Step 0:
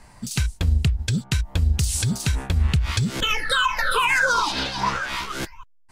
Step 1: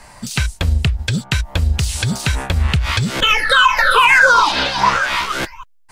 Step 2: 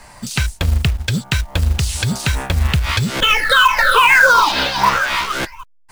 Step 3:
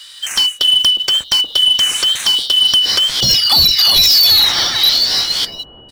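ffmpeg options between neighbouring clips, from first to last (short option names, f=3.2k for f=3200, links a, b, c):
-filter_complex "[0:a]acrossover=split=3800[a][b];[b]acompressor=threshold=-37dB:ratio=4:attack=1:release=60[c];[a][c]amix=inputs=2:normalize=0,equalizer=f=570:t=o:w=0.22:g=4,acrossover=split=530[d][e];[e]acontrast=78[f];[d][f]amix=inputs=2:normalize=0,volume=3.5dB"
-af "acrusher=bits=5:mode=log:mix=0:aa=0.000001"
-filter_complex "[0:a]afftfilt=real='real(if(lt(b,272),68*(eq(floor(b/68),0)*2+eq(floor(b/68),1)*3+eq(floor(b/68),2)*0+eq(floor(b/68),3)*1)+mod(b,68),b),0)':imag='imag(if(lt(b,272),68*(eq(floor(b/68),0)*2+eq(floor(b/68),1)*3+eq(floor(b/68),2)*0+eq(floor(b/68),3)*1)+mod(b,68),b),0)':win_size=2048:overlap=0.75,acrossover=split=1200[a][b];[a]asplit=7[c][d][e][f][g][h][i];[d]adelay=358,afreqshift=-82,volume=-5.5dB[j];[e]adelay=716,afreqshift=-164,volume=-11.7dB[k];[f]adelay=1074,afreqshift=-246,volume=-17.9dB[l];[g]adelay=1432,afreqshift=-328,volume=-24.1dB[m];[h]adelay=1790,afreqshift=-410,volume=-30.3dB[n];[i]adelay=2148,afreqshift=-492,volume=-36.5dB[o];[c][j][k][l][m][n][o]amix=inputs=7:normalize=0[p];[b]aeval=exprs='0.944*sin(PI/2*2.24*val(0)/0.944)':c=same[q];[p][q]amix=inputs=2:normalize=0,volume=-6dB"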